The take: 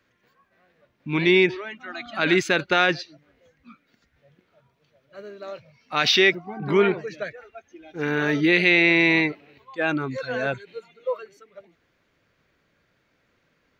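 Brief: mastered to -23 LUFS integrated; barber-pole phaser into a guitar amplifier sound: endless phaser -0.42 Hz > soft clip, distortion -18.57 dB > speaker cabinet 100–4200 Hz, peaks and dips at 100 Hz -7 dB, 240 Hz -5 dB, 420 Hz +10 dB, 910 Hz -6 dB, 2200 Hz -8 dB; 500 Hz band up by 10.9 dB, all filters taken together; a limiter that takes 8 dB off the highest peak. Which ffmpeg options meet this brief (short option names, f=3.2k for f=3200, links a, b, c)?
-filter_complex "[0:a]equalizer=f=500:t=o:g=8,alimiter=limit=-11dB:level=0:latency=1,asplit=2[a][b];[b]afreqshift=-0.42[c];[a][c]amix=inputs=2:normalize=1,asoftclip=threshold=-15.5dB,highpass=100,equalizer=f=100:t=q:w=4:g=-7,equalizer=f=240:t=q:w=4:g=-5,equalizer=f=420:t=q:w=4:g=10,equalizer=f=910:t=q:w=4:g=-6,equalizer=f=2.2k:t=q:w=4:g=-8,lowpass=f=4.2k:w=0.5412,lowpass=f=4.2k:w=1.3066,volume=2.5dB"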